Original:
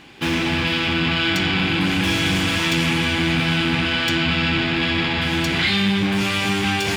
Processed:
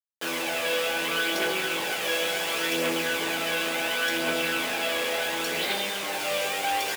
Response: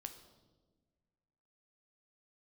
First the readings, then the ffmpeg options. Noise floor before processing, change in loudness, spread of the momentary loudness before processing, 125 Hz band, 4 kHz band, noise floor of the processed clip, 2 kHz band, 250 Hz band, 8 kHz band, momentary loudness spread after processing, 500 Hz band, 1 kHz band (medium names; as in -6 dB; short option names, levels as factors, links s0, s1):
-22 dBFS, -7.0 dB, 2 LU, -24.5 dB, -7.5 dB, -31 dBFS, -6.0 dB, -15.0 dB, +0.5 dB, 2 LU, -1.0 dB, -4.0 dB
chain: -filter_complex "[0:a]equalizer=f=16000:w=0.66:g=12,aphaser=in_gain=1:out_gain=1:delay=1.9:decay=0.49:speed=0.7:type=triangular,acrusher=bits=3:mix=0:aa=0.000001,highpass=f=510:t=q:w=3.7,asplit=2[s0][s1];[s1]adelay=24,volume=0.266[s2];[s0][s2]amix=inputs=2:normalize=0,asplit=4[s3][s4][s5][s6];[s4]adelay=437,afreqshift=-54,volume=0.211[s7];[s5]adelay=874,afreqshift=-108,volume=0.07[s8];[s6]adelay=1311,afreqshift=-162,volume=0.0229[s9];[s3][s7][s8][s9]amix=inputs=4:normalize=0[s10];[1:a]atrim=start_sample=2205,afade=t=out:st=0.39:d=0.01,atrim=end_sample=17640,asetrate=83790,aresample=44100[s11];[s10][s11]afir=irnorm=-1:irlink=0"